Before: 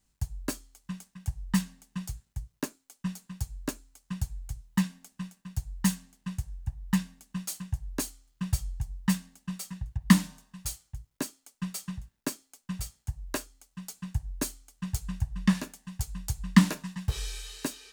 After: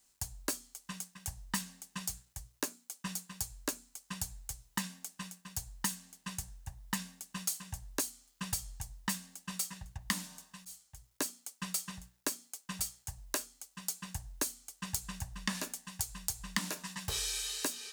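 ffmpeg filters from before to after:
-filter_complex "[0:a]asplit=2[a][b];[a]atrim=end=10.65,asetpts=PTS-STARTPTS,afade=t=out:st=10.646:d=0.004:c=hsin[c];[b]atrim=start=10.65,asetpts=PTS-STARTPTS,afade=t=in:d=0.45[d];[c][d]concat=n=2:v=0:a=1,bass=f=250:g=-14,treble=f=4k:g=6,bandreject=f=60:t=h:w=6,bandreject=f=120:t=h:w=6,bandreject=f=180:t=h:w=6,bandreject=f=240:t=h:w=6,acompressor=threshold=-34dB:ratio=8,volume=3dB"

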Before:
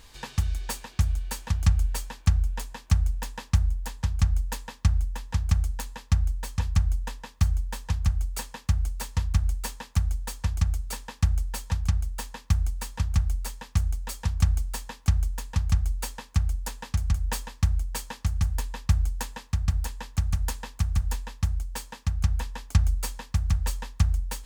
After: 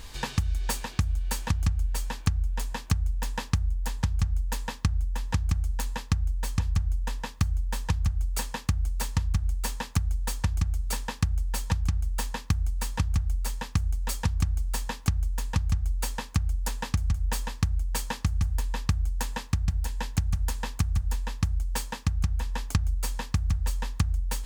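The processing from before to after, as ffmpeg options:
-filter_complex "[0:a]asettb=1/sr,asplit=3[a][b][c];[a]atrim=end=19.674[d];[b]atrim=start=19.67:end=20.29,asetpts=PTS-STARTPTS,afade=t=in:d=0.004:c=qsin,afade=t=out:st=0.616:d=0.004:c=qsin,bandreject=f=1.2k:w=9.2[e];[c]atrim=start=20.286[f];[d][e]acrossfade=d=0.004:c1=hsin:c2=qsin[g];[g][f]acrossfade=d=0.004:c1=qsin:c2=hsin,lowshelf=f=180:g=4,acompressor=threshold=-29dB:ratio=6,volume=6dB"

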